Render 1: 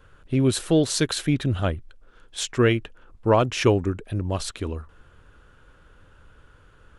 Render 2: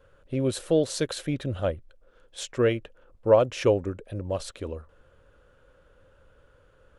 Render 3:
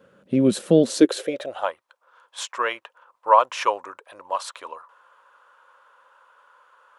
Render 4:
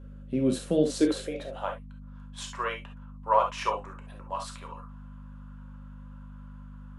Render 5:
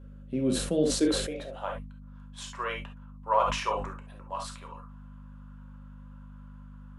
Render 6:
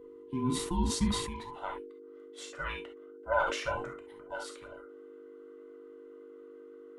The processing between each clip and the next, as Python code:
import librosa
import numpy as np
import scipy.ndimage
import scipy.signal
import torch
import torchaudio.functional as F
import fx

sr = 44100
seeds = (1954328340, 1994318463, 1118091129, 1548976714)

y1 = fx.peak_eq(x, sr, hz=540.0, db=13.5, octaves=0.46)
y1 = F.gain(torch.from_numpy(y1), -7.5).numpy()
y2 = fx.filter_sweep_highpass(y1, sr, from_hz=200.0, to_hz=1000.0, start_s=0.79, end_s=1.69, q=5.9)
y2 = F.gain(torch.from_numpy(y2), 3.5).numpy()
y3 = fx.add_hum(y2, sr, base_hz=50, snr_db=12)
y3 = fx.rev_gated(y3, sr, seeds[0], gate_ms=90, shape='flat', drr_db=2.0)
y3 = F.gain(torch.from_numpy(y3), -9.0).numpy()
y4 = fx.sustainer(y3, sr, db_per_s=58.0)
y4 = F.gain(torch.from_numpy(y4), -2.5).numpy()
y5 = fx.band_invert(y4, sr, width_hz=500)
y5 = F.gain(torch.from_numpy(y5), -4.0).numpy()